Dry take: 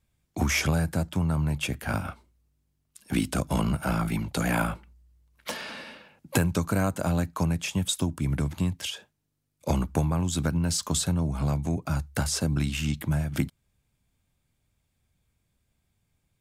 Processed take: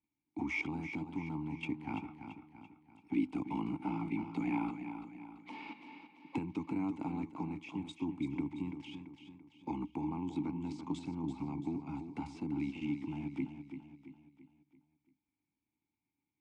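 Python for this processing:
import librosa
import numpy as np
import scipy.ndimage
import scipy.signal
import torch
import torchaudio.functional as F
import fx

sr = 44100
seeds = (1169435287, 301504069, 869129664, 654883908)

y = scipy.signal.sosfilt(scipy.signal.butter(6, 10000.0, 'lowpass', fs=sr, output='sos'), x)
y = fx.high_shelf(y, sr, hz=6200.0, db=-6.5)
y = fx.level_steps(y, sr, step_db=10)
y = fx.vowel_filter(y, sr, vowel='u')
y = fx.echo_feedback(y, sr, ms=337, feedback_pct=46, wet_db=-9)
y = y * librosa.db_to_amplitude(7.0)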